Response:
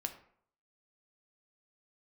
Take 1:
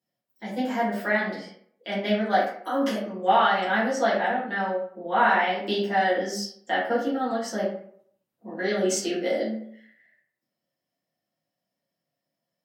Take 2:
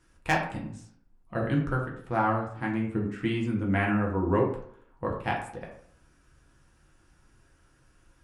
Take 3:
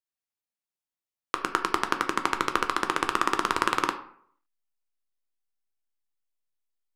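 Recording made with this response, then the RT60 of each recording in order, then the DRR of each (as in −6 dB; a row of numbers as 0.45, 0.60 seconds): 3; 0.60, 0.60, 0.60 seconds; −10.5, −2.5, 5.5 decibels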